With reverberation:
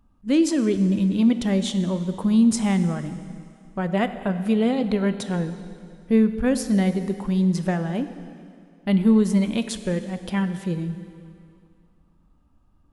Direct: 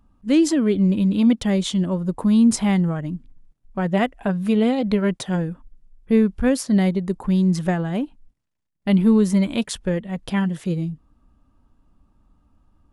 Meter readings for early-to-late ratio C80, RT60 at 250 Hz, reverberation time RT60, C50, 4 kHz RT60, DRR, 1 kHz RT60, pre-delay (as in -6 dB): 12.0 dB, 2.3 s, 2.4 s, 11.0 dB, 2.2 s, 10.0 dB, 2.4 s, 4 ms